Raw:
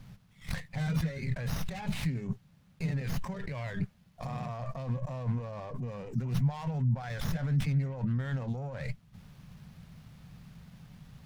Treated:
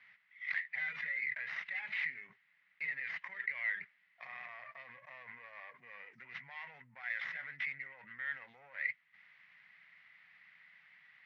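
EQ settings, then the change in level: band-pass 2000 Hz, Q 9.2; air absorption 290 m; tilt +3.5 dB/oct; +14.0 dB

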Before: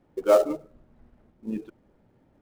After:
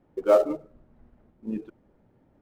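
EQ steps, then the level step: high shelf 3500 Hz -9.5 dB; 0.0 dB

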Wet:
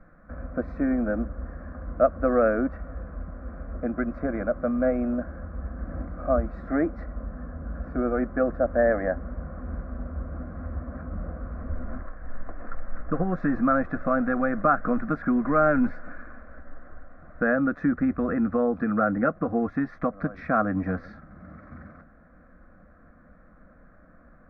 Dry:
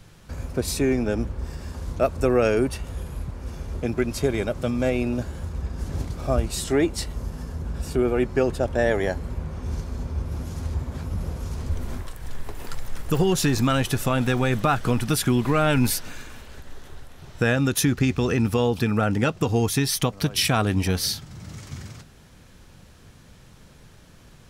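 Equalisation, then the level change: LPF 1500 Hz 24 dB/oct; low shelf 490 Hz -6 dB; fixed phaser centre 600 Hz, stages 8; +5.0 dB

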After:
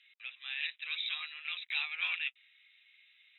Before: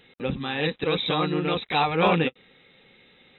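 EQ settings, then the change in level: ladder high-pass 2000 Hz, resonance 45%; air absorption 78 m; 0.0 dB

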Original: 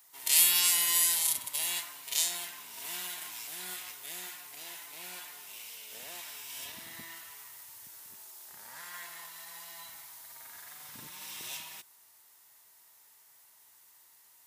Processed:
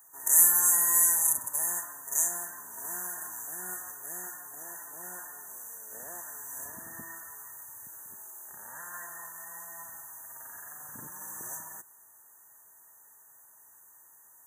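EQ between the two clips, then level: brick-wall FIR band-stop 1900–5900 Hz; +4.0 dB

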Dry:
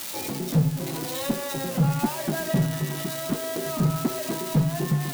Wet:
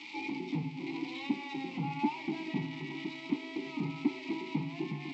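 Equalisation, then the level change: vowel filter u; brick-wall FIR low-pass 7900 Hz; band shelf 3100 Hz +10 dB; +3.0 dB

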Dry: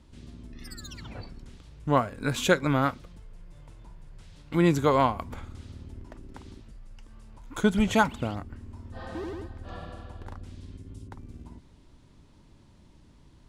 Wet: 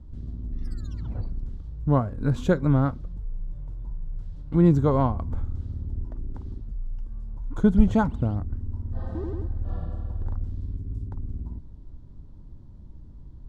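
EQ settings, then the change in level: RIAA curve playback; bell 2400 Hz -10 dB 1 oct; -3.0 dB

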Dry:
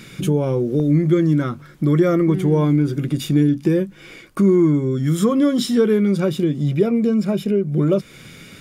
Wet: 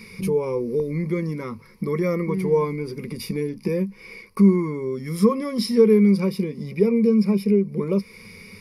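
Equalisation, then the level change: ripple EQ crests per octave 0.87, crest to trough 17 dB; -6.5 dB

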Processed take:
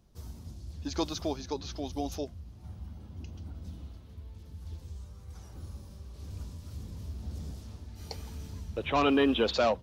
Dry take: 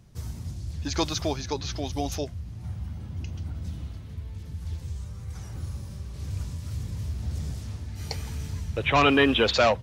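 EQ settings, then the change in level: dynamic EQ 210 Hz, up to +5 dB, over -39 dBFS, Q 0.8; ten-band EQ 125 Hz -11 dB, 2000 Hz -7 dB, 8000 Hz -5 dB; -5.0 dB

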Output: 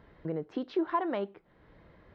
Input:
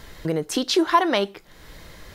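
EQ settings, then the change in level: HPF 110 Hz 6 dB/oct; air absorption 110 m; tape spacing loss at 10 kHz 43 dB; -7.5 dB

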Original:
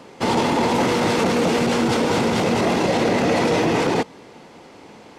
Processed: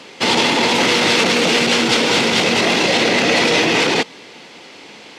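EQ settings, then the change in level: weighting filter D; +2.0 dB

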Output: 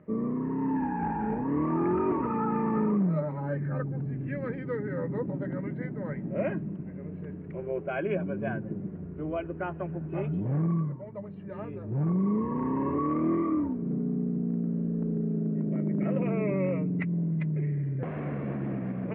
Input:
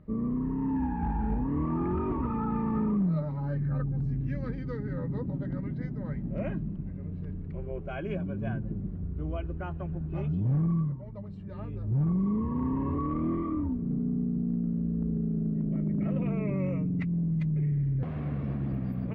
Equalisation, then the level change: speaker cabinet 240–2500 Hz, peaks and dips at 250 Hz -6 dB, 800 Hz -3 dB, 1200 Hz -4 dB; +7.5 dB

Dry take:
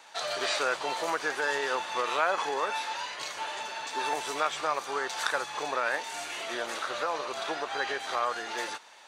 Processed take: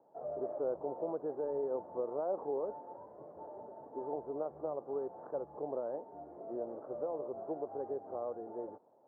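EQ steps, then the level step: inverse Chebyshev low-pass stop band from 2700 Hz, stop band 70 dB; air absorption 250 m; 0.0 dB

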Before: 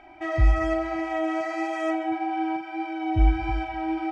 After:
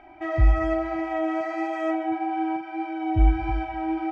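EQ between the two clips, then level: high shelf 3600 Hz -11.5 dB; +1.0 dB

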